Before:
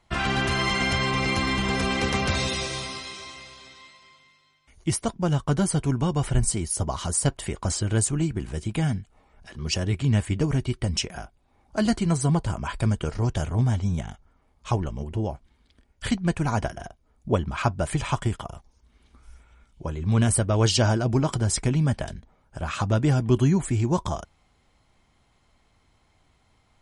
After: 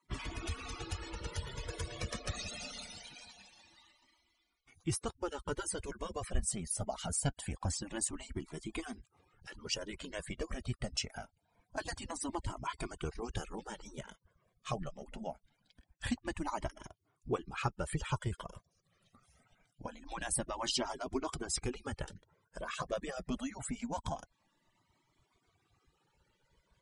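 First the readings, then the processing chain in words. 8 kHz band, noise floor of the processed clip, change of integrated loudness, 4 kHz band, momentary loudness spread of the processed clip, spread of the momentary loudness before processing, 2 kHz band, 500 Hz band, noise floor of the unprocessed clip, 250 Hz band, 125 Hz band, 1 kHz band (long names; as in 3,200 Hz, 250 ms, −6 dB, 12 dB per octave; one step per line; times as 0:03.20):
−9.5 dB, −79 dBFS, −14.5 dB, −12.0 dB, 14 LU, 13 LU, −14.5 dB, −12.5 dB, −65 dBFS, −16.5 dB, −19.5 dB, −11.5 dB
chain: harmonic-percussive split with one part muted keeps percussive
in parallel at +3 dB: downward compressor, threshold −39 dBFS, peak gain reduction 20.5 dB
on the sum: flanger whose copies keep moving one way rising 0.24 Hz
level −7 dB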